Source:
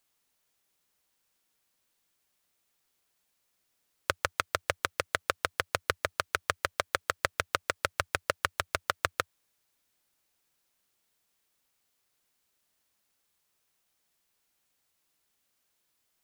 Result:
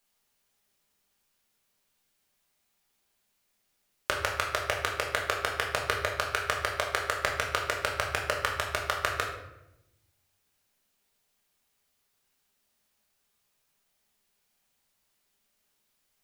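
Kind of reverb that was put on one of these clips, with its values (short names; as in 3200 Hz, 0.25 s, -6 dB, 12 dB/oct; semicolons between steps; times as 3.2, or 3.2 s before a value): shoebox room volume 290 m³, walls mixed, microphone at 1.3 m; gain -1.5 dB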